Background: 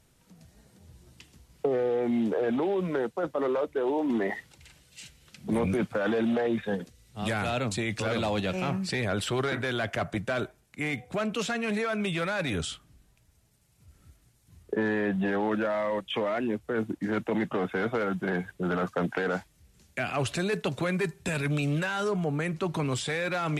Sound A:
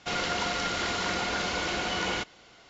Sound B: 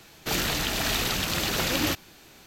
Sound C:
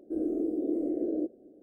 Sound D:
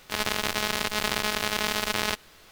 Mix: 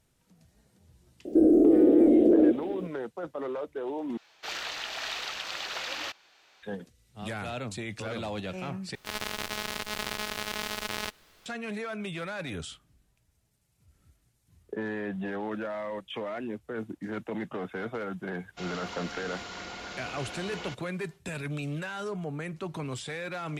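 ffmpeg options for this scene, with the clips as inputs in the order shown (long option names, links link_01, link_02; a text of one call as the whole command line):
ffmpeg -i bed.wav -i cue0.wav -i cue1.wav -i cue2.wav -i cue3.wav -filter_complex "[0:a]volume=-6.5dB[link_01];[3:a]alimiter=level_in=29.5dB:limit=-1dB:release=50:level=0:latency=1[link_02];[2:a]acrossover=split=530 6000:gain=0.0708 1 0.1[link_03][link_04][link_05];[link_03][link_04][link_05]amix=inputs=3:normalize=0[link_06];[link_01]asplit=3[link_07][link_08][link_09];[link_07]atrim=end=4.174[link_10];[link_06]atrim=end=2.46,asetpts=PTS-STARTPTS,volume=-6dB[link_11];[link_08]atrim=start=6.626:end=8.954[link_12];[4:a]atrim=end=2.51,asetpts=PTS-STARTPTS,volume=-7dB[link_13];[link_09]atrim=start=11.456[link_14];[link_02]atrim=end=1.62,asetpts=PTS-STARTPTS,volume=-12dB,afade=type=in:duration=0.004:curve=hsin,afade=type=out:start_time=1.616:duration=0.004:curve=hsin,adelay=1250[link_15];[1:a]atrim=end=2.69,asetpts=PTS-STARTPTS,volume=-11dB,afade=type=in:duration=0.05,afade=type=out:start_time=2.64:duration=0.05,adelay=18510[link_16];[link_10][link_11]acrossfade=duration=0.004:curve1=hsin:curve2=hsin[link_17];[link_17][link_12]acrossfade=duration=0.004:curve1=hsin:curve2=hsin[link_18];[link_18][link_13]acrossfade=duration=0.004:curve1=hsin:curve2=hsin[link_19];[link_19][link_14]acrossfade=duration=0.004:curve1=hsin:curve2=hsin[link_20];[link_20][link_15][link_16]amix=inputs=3:normalize=0" out.wav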